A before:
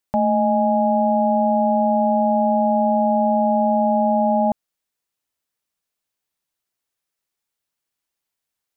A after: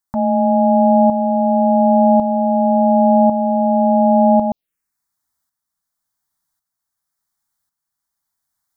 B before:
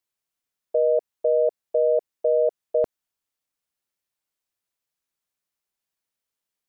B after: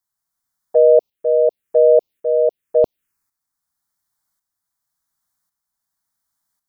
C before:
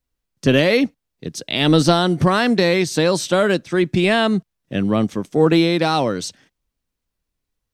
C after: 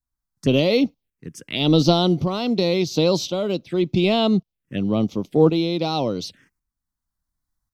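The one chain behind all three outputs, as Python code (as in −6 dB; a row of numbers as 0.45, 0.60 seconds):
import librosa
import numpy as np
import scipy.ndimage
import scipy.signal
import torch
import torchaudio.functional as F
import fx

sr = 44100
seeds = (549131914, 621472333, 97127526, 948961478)

y = fx.tremolo_shape(x, sr, shape='saw_up', hz=0.91, depth_pct=60)
y = fx.env_phaser(y, sr, low_hz=460.0, high_hz=1700.0, full_db=-22.0)
y = librosa.util.normalize(y) * 10.0 ** (-3 / 20.0)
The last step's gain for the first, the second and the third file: +8.5, +12.0, +1.0 decibels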